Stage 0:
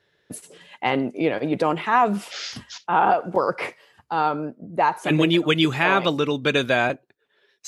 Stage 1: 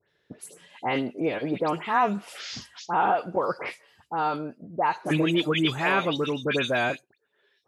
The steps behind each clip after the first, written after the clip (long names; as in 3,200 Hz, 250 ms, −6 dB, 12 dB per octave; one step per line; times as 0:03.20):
all-pass dispersion highs, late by 97 ms, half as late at 2,700 Hz
level −4.5 dB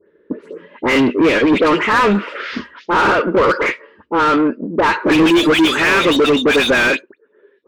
phaser with its sweep stopped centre 310 Hz, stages 4
low-pass that shuts in the quiet parts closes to 560 Hz, open at −22.5 dBFS
mid-hump overdrive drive 29 dB, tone 1,600 Hz, clips at −13 dBFS
level +9 dB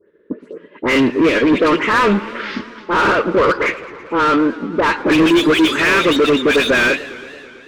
parametric band 810 Hz −5.5 dB 0.31 octaves
transient designer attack −1 dB, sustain −5 dB
feedback echo with a swinging delay time 110 ms, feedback 78%, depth 207 cents, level −18.5 dB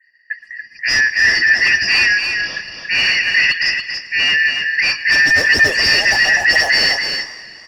band-splitting scrambler in four parts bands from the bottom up 3142
parametric band 1,200 Hz +5 dB 0.26 octaves
single-tap delay 283 ms −6 dB
level −1 dB